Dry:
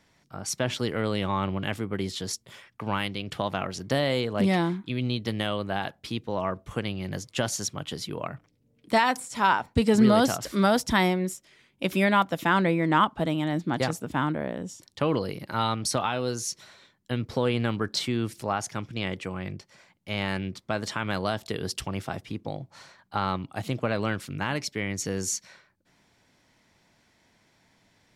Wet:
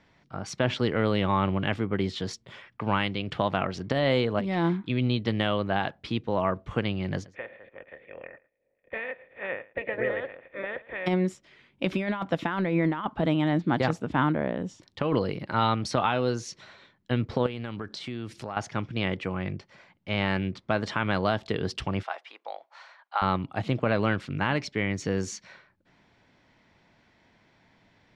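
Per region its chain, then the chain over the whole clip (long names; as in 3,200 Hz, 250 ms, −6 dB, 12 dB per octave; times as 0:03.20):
0:07.24–0:11.06: ceiling on every frequency bin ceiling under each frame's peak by 29 dB + formant resonators in series e + single-tap delay 111 ms −21 dB
0:17.46–0:18.57: high-shelf EQ 4,500 Hz +9 dB + downward compressor 4 to 1, threshold −35 dBFS
0:22.03–0:23.22: high-pass filter 670 Hz 24 dB per octave + high-shelf EQ 4,200 Hz −4.5 dB
whole clip: low-pass filter 3,400 Hz 12 dB per octave; compressor whose output falls as the input rises −25 dBFS, ratio −0.5; level +2 dB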